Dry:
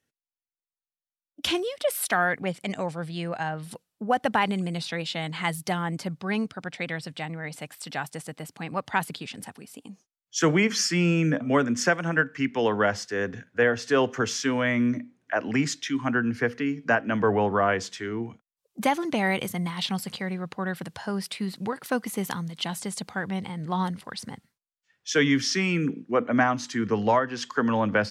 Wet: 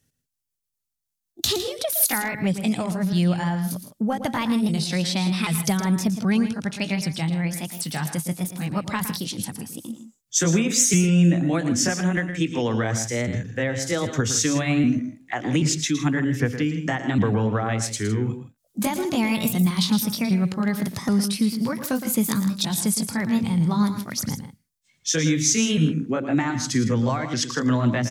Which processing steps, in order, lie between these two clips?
pitch shifter swept by a sawtooth +3.5 semitones, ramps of 781 ms
downward compressor, threshold −26 dBFS, peak gain reduction 9 dB
bass and treble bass +15 dB, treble +11 dB
on a send: multi-tap delay 114/159 ms −10.5/−14 dB
on the sum: level +2 dB

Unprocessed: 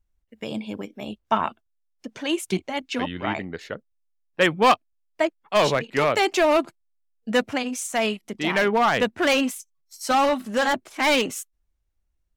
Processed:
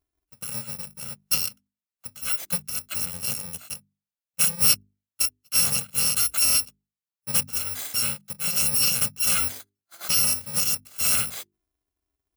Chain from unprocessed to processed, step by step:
samples in bit-reversed order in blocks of 128 samples
high-pass filter 63 Hz
mains-hum notches 50/100/150/200/250/300/350/400 Hz
level −2 dB

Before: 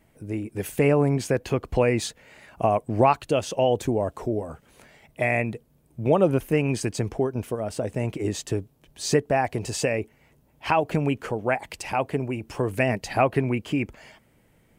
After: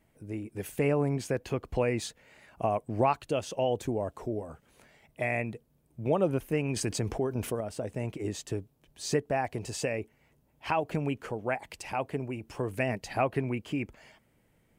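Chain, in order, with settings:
0:06.76–0:07.61: envelope flattener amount 50%
level −7 dB

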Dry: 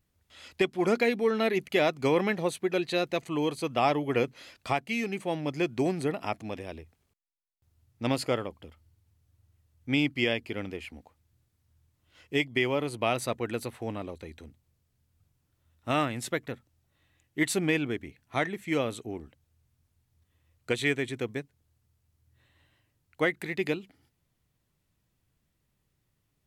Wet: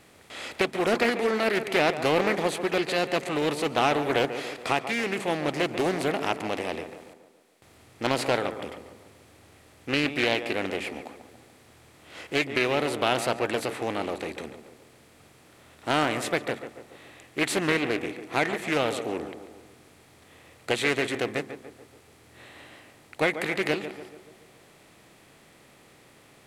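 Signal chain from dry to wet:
compressor on every frequency bin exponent 0.6
low-shelf EQ 250 Hz −6.5 dB
tape delay 142 ms, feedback 57%, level −9 dB, low-pass 1,700 Hz
highs frequency-modulated by the lows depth 0.31 ms

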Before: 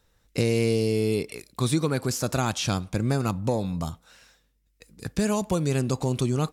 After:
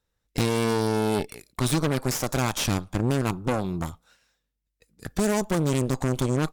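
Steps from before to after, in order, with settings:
noise reduction from a noise print of the clip's start 6 dB
noise gate −57 dBFS, range −6 dB
harmonic generator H 8 −14 dB, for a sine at −11.5 dBFS

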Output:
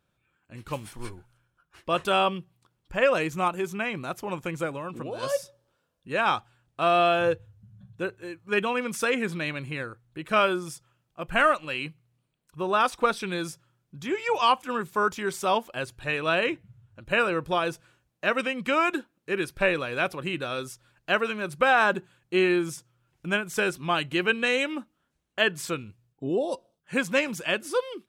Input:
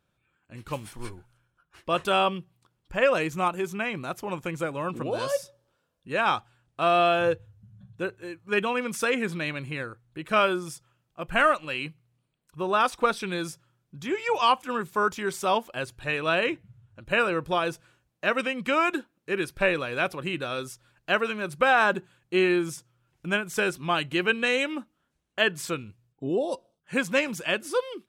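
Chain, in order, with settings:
0:04.72–0:05.23: downward compressor 4 to 1, threshold −32 dBFS, peak gain reduction 7 dB

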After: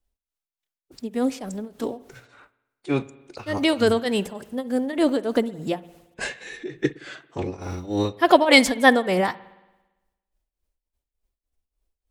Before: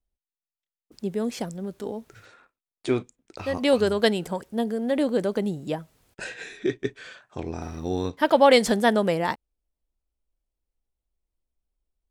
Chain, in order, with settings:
parametric band 200 Hz −2 dB
mains-hum notches 50/100/150 Hz
shaped tremolo triangle 3.4 Hz, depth 90%
phase-vocoder pitch shift with formants kept +2 semitones
spring reverb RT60 1.1 s, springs 56 ms, chirp 25 ms, DRR 18.5 dB
level +7.5 dB

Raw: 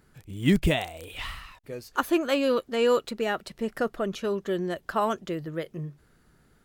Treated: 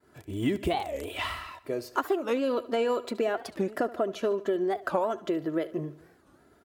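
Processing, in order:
downward expander −57 dBFS
high-pass filter 67 Hz 24 dB per octave
parametric band 570 Hz +10 dB 2.3 octaves
comb filter 3 ms, depth 50%
downward compressor 6 to 1, threshold −25 dBFS, peak gain reduction 16 dB
on a send: repeating echo 74 ms, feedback 49%, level −17.5 dB
on the sum: wow of a warped record 45 rpm, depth 250 cents

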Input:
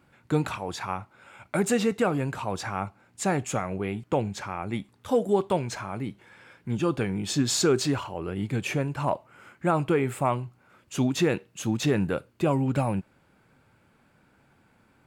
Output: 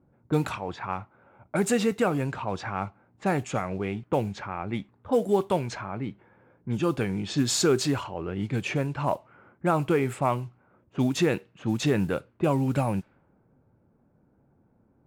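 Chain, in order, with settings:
noise that follows the level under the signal 31 dB
low-pass that shuts in the quiet parts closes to 570 Hz, open at −22.5 dBFS

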